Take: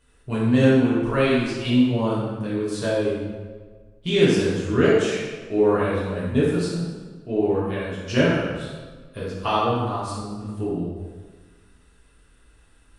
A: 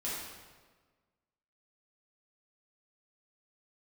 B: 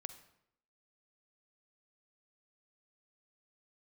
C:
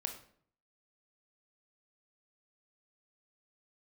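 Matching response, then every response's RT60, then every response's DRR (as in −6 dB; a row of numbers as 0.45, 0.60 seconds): A; 1.4, 0.75, 0.55 seconds; −8.5, 10.5, 4.5 decibels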